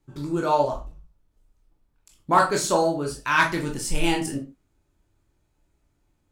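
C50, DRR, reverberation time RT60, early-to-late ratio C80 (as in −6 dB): 9.5 dB, 0.0 dB, non-exponential decay, 16.0 dB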